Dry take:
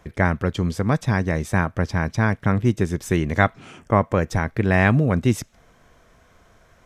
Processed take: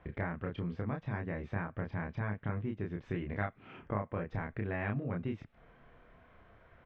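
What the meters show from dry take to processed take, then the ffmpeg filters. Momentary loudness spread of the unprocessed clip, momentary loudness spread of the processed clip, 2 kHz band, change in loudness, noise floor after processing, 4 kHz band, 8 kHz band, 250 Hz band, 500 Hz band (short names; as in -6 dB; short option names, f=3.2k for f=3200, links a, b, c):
6 LU, 4 LU, -17.5 dB, -16.5 dB, -63 dBFS, under -20 dB, under -40 dB, -16.5 dB, -16.5 dB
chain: -filter_complex "[0:a]lowpass=f=2.9k:w=0.5412,lowpass=f=2.9k:w=1.3066,acompressor=threshold=-31dB:ratio=3,asplit=2[a][b];[b]adelay=29,volume=-3dB[c];[a][c]amix=inputs=2:normalize=0,volume=-7dB"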